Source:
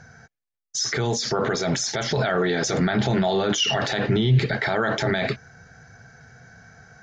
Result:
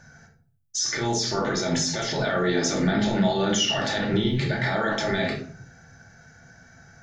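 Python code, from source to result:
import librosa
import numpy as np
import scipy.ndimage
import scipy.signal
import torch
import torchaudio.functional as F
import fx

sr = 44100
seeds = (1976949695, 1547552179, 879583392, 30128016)

y = fx.high_shelf(x, sr, hz=7200.0, db=10.0)
y = fx.room_shoebox(y, sr, seeds[0], volume_m3=480.0, walls='furnished', distance_m=2.5)
y = y * librosa.db_to_amplitude(-6.0)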